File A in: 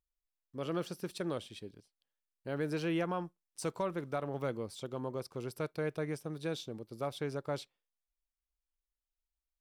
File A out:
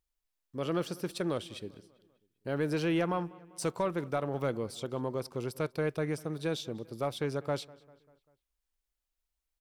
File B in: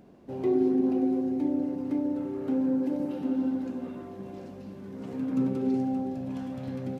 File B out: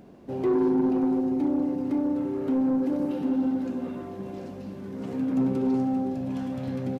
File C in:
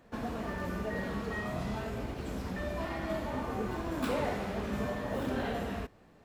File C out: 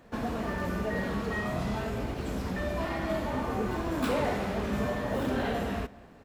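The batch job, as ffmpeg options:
ffmpeg -i in.wav -filter_complex "[0:a]asoftclip=type=tanh:threshold=-22dB,asplit=2[link_01][link_02];[link_02]adelay=197,lowpass=frequency=4100:poles=1,volume=-22dB,asplit=2[link_03][link_04];[link_04]adelay=197,lowpass=frequency=4100:poles=1,volume=0.54,asplit=2[link_05][link_06];[link_06]adelay=197,lowpass=frequency=4100:poles=1,volume=0.54,asplit=2[link_07][link_08];[link_08]adelay=197,lowpass=frequency=4100:poles=1,volume=0.54[link_09];[link_01][link_03][link_05][link_07][link_09]amix=inputs=5:normalize=0,volume=4.5dB" out.wav

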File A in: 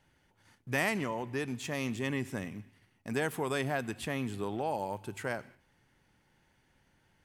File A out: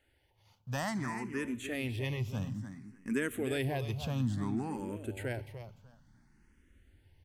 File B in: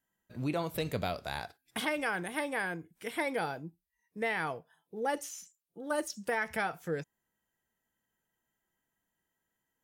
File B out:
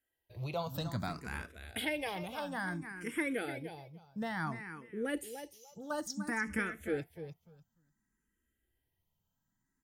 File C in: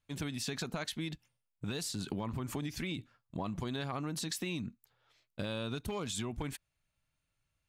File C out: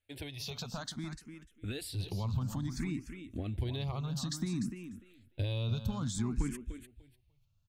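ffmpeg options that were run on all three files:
ffmpeg -i in.wav -filter_complex "[0:a]equalizer=frequency=160:width_type=o:width=0.8:gain=-6,aecho=1:1:297|594|891:0.316|0.0569|0.0102,asubboost=boost=5.5:cutoff=250,asplit=2[link_01][link_02];[link_02]afreqshift=0.58[link_03];[link_01][link_03]amix=inputs=2:normalize=1" out.wav

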